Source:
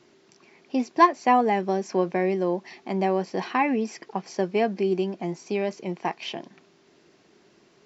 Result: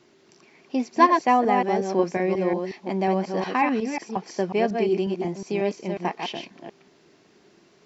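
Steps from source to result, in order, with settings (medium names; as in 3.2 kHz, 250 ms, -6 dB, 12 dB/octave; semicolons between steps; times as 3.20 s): chunks repeated in reverse 181 ms, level -4.5 dB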